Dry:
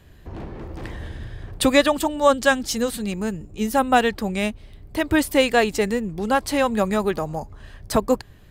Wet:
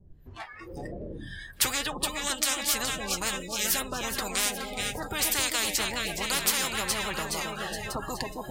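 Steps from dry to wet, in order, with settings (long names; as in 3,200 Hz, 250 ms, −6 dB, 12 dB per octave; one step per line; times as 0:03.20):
two-band tremolo in antiphase 1 Hz, depth 100%, crossover 740 Hz
pitch vibrato 7.1 Hz 43 cents
flanger 0.97 Hz, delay 4.8 ms, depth 5.3 ms, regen +37%
speech leveller within 4 dB 0.5 s
on a send: echo with a time of its own for lows and highs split 1,000 Hz, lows 268 ms, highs 419 ms, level −12.5 dB
on the sum: noise reduction from a noise print of the clip's start 23 dB
low-shelf EQ 270 Hz +11 dB
every bin compressed towards the loudest bin 10 to 1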